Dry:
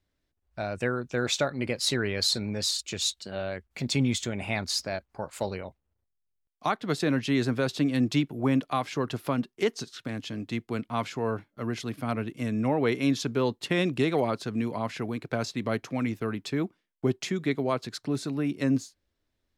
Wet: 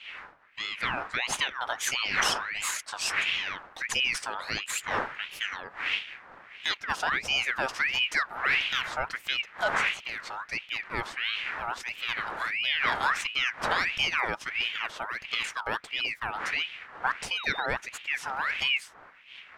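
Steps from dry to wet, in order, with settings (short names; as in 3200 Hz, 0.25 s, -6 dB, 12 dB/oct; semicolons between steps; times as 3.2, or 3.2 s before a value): wind noise 520 Hz -35 dBFS; painted sound rise, 17.37–17.66, 1100–3100 Hz -36 dBFS; ring modulator with a swept carrier 1900 Hz, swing 45%, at 1.5 Hz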